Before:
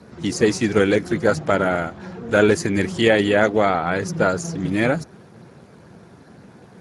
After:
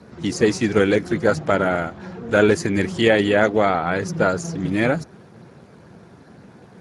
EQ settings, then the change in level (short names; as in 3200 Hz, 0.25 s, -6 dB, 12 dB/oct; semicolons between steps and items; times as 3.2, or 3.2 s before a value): high shelf 8700 Hz -5.5 dB; 0.0 dB